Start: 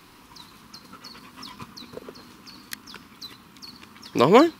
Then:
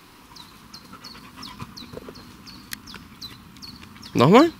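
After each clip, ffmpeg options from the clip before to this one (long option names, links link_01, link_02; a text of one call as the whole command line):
ffmpeg -i in.wav -af "asubboost=boost=3:cutoff=210,volume=2dB" out.wav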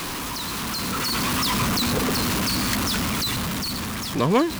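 ffmpeg -i in.wav -af "aeval=exprs='val(0)+0.5*0.141*sgn(val(0))':channel_layout=same,dynaudnorm=framelen=420:gausssize=5:maxgain=8dB,volume=-7.5dB" out.wav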